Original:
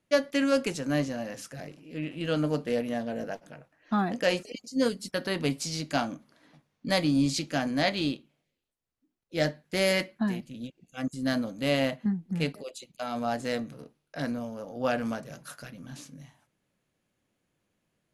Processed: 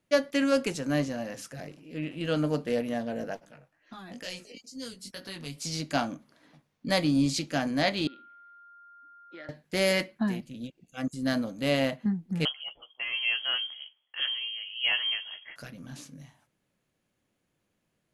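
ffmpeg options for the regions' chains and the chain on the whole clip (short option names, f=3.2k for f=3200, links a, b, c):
-filter_complex "[0:a]asettb=1/sr,asplit=3[a][b][c];[a]atrim=end=3.454[d];[b]atrim=start=3.45:end=5.65,asetpts=PTS-STARTPTS,afade=t=in:d=0.004:c=qsin,afade=t=out:st=2.196:d=0.004:c=qsin,equalizer=f=310:w=0.34:g=-4,acrossover=split=120|3000[e][f][g];[f]acompressor=threshold=-37dB:ratio=6:attack=3.2:release=140:knee=2.83:detection=peak[h];[e][h][g]amix=inputs=3:normalize=0,flanger=delay=15.5:depth=5.7:speed=2.2[i];[c]atrim=start=5.646[j];[d][i]acrossfade=d=0.004:c1=hsin:c2=qsin[k];[k][j]acrossfade=d=0.004:c1=qsin:c2=hsin,asettb=1/sr,asplit=3[l][m][n];[l]atrim=end=8.074[o];[m]atrim=start=8.07:end=9.49,asetpts=PTS-STARTPTS,afade=t=in:d=0.004:c=qsin,afade=t=out:st=1.416:d=0.004:c=qsin,acompressor=threshold=-38dB:ratio=12:attack=3.2:release=140:knee=1:detection=peak,aeval=exprs='val(0)+0.002*sin(2*PI*1400*n/s)':c=same,highpass=f=260:w=0.5412,highpass=f=260:w=1.3066,equalizer=f=280:t=q:w=4:g=-3,equalizer=f=460:t=q:w=4:g=-8,equalizer=f=710:t=q:w=4:g=-6,equalizer=f=1.3k:t=q:w=4:g=4,equalizer=f=1.9k:t=q:w=4:g=6,equalizer=f=2.7k:t=q:w=4:g=-5,lowpass=f=3.5k:w=0.5412,lowpass=f=3.5k:w=1.3066[p];[n]atrim=start=9.486[q];[o][p]acrossfade=d=0.004:c1=hsin:c2=qsin[r];[r][q]acrossfade=d=0.004:c1=qsin:c2=hsin,asettb=1/sr,asplit=3[s][t][u];[s]atrim=end=12.454[v];[t]atrim=start=12.45:end=15.56,asetpts=PTS-STARTPTS,afade=t=in:d=0.004:c=qsin,afade=t=out:st=3.106:d=0.004:c=qsin,asplit=2[w][x];[x]adelay=14,volume=-7dB[y];[w][y]amix=inputs=2:normalize=0,atrim=end_sample=137151,lowpass=f=2.9k:t=q:w=0.5098,lowpass=f=2.9k:t=q:w=0.6013,lowpass=f=2.9k:t=q:w=0.9,lowpass=f=2.9k:t=q:w=2.563,afreqshift=-3400[z];[u]atrim=start=15.556[aa];[v][z]acrossfade=d=0.004:c1=hsin:c2=qsin[ab];[ab][aa]acrossfade=d=0.004:c1=qsin:c2=hsin"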